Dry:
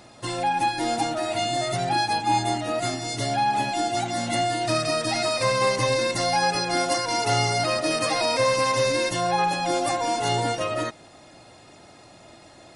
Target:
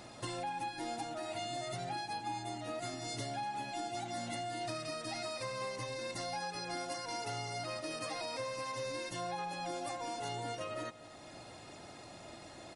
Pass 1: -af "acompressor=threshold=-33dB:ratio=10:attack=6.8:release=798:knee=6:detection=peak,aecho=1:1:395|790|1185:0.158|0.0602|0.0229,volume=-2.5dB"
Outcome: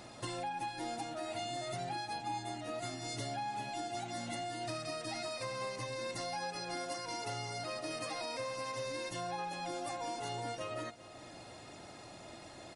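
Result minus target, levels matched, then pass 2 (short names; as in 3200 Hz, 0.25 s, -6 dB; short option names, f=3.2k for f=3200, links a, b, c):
echo 0.149 s late
-af "acompressor=threshold=-33dB:ratio=10:attack=6.8:release=798:knee=6:detection=peak,aecho=1:1:246|492|738:0.158|0.0602|0.0229,volume=-2.5dB"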